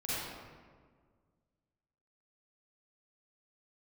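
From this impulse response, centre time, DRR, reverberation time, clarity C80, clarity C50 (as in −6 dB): 137 ms, −11.0 dB, 1.7 s, −2.5 dB, −7.0 dB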